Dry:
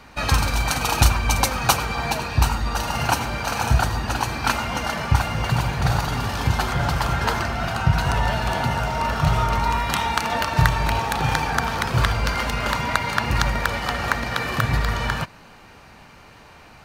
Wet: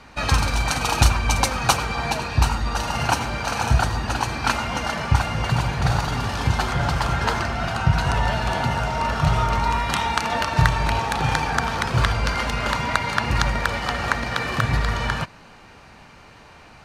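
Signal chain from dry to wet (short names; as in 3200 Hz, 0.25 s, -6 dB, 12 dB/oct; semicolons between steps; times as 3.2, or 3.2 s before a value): LPF 10000 Hz 12 dB/oct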